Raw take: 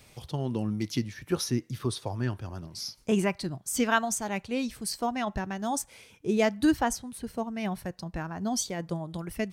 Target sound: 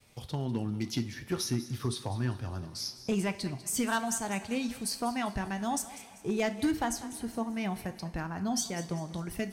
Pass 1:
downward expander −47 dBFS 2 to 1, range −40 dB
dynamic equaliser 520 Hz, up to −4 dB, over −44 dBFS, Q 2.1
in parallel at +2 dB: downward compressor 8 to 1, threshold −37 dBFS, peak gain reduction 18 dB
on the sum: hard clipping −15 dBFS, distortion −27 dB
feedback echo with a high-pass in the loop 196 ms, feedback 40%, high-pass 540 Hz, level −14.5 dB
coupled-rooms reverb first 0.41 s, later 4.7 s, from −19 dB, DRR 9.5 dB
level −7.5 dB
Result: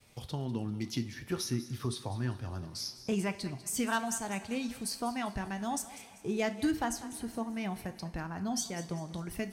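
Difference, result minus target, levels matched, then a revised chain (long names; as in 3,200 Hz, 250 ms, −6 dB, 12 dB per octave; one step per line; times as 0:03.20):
downward compressor: peak gain reduction +7.5 dB
downward expander −47 dBFS 2 to 1, range −40 dB
dynamic equaliser 520 Hz, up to −4 dB, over −44 dBFS, Q 2.1
in parallel at +2 dB: downward compressor 8 to 1, threshold −28.5 dBFS, peak gain reduction 10.5 dB
on the sum: hard clipping −15 dBFS, distortion −21 dB
feedback echo with a high-pass in the loop 196 ms, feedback 40%, high-pass 540 Hz, level −14.5 dB
coupled-rooms reverb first 0.41 s, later 4.7 s, from −19 dB, DRR 9.5 dB
level −7.5 dB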